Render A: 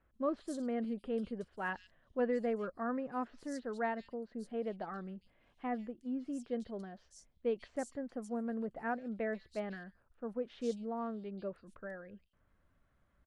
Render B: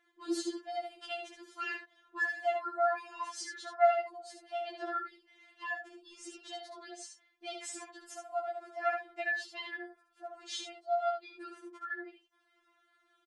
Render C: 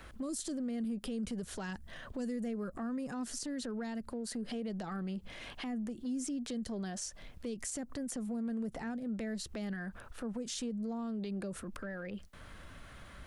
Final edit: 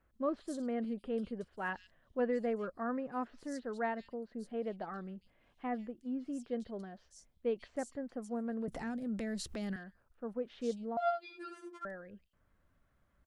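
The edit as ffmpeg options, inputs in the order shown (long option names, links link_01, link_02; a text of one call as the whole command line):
ffmpeg -i take0.wav -i take1.wav -i take2.wav -filter_complex "[0:a]asplit=3[link_01][link_02][link_03];[link_01]atrim=end=8.682[link_04];[2:a]atrim=start=8.678:end=9.762[link_05];[link_02]atrim=start=9.758:end=10.972[link_06];[1:a]atrim=start=10.968:end=11.852[link_07];[link_03]atrim=start=11.848[link_08];[link_04][link_05]acrossfade=duration=0.004:curve1=hsin:curve2=hsin[link_09];[link_09][link_06]acrossfade=duration=0.004:curve1=hsin:curve2=hsin[link_10];[link_10][link_07]acrossfade=duration=0.004:curve1=hsin:curve2=hsin[link_11];[link_11][link_08]acrossfade=duration=0.004:curve1=hsin:curve2=hsin" out.wav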